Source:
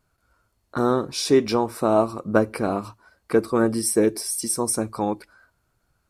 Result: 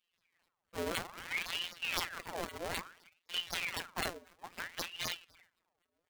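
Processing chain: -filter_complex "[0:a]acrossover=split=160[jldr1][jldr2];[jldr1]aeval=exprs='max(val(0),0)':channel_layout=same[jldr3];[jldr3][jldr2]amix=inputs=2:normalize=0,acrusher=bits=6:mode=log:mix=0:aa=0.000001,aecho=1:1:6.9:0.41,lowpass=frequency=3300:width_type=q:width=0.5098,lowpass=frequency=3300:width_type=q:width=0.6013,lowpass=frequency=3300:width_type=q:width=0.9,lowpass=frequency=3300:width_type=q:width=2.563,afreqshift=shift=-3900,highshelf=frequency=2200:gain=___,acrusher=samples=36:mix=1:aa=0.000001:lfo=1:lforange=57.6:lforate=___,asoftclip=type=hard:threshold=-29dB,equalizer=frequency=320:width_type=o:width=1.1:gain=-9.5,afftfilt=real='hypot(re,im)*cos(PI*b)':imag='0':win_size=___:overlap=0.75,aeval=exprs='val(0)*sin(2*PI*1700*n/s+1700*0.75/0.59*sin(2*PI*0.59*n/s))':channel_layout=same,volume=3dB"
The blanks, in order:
-10, 3.9, 1024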